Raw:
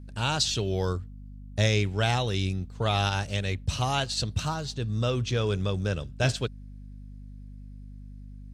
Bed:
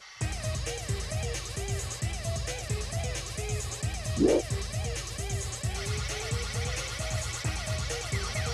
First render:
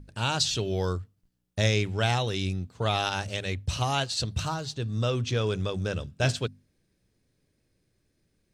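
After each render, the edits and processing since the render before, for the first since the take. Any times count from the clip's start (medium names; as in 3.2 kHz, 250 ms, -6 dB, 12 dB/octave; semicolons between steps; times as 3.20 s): hum notches 50/100/150/200/250 Hz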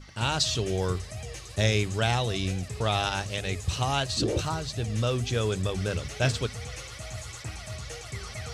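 add bed -6 dB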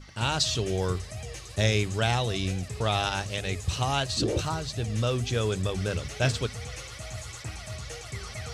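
no audible change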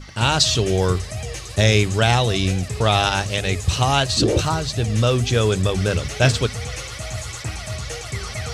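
trim +9 dB; peak limiter -3 dBFS, peak gain reduction 2 dB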